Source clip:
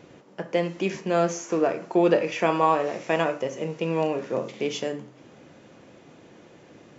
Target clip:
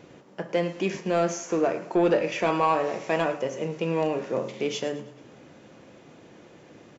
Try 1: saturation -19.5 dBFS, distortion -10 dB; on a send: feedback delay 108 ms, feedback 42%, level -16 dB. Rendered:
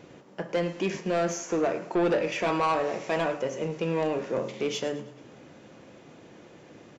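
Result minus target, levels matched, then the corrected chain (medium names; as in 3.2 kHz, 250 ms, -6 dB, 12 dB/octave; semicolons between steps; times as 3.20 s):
saturation: distortion +7 dB
saturation -13 dBFS, distortion -18 dB; on a send: feedback delay 108 ms, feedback 42%, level -16 dB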